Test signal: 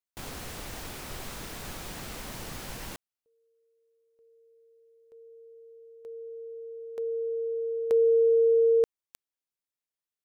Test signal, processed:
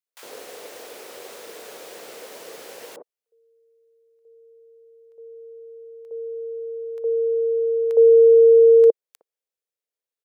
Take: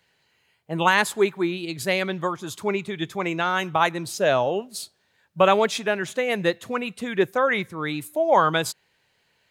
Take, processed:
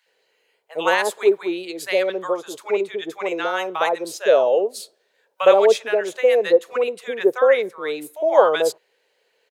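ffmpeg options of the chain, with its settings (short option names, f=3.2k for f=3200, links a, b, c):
-filter_complex "[0:a]highpass=f=470:t=q:w=4,acrossover=split=950[a][b];[a]adelay=60[c];[c][b]amix=inputs=2:normalize=0,volume=-1dB"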